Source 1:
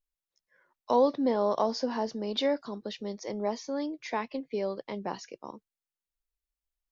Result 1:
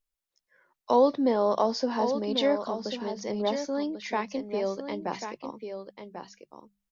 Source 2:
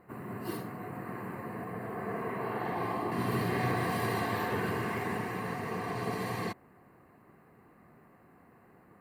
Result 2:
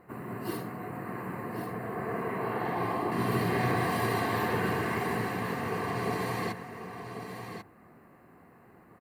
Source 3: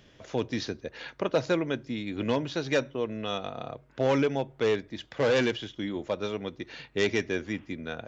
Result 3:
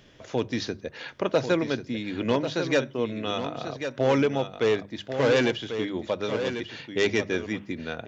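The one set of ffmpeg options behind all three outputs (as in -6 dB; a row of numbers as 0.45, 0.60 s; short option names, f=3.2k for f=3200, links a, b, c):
-af "bandreject=f=50:t=h:w=6,bandreject=f=100:t=h:w=6,bandreject=f=150:t=h:w=6,bandreject=f=200:t=h:w=6,aecho=1:1:1092:0.376,volume=2.5dB"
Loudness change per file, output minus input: +2.5, +2.5, +3.0 LU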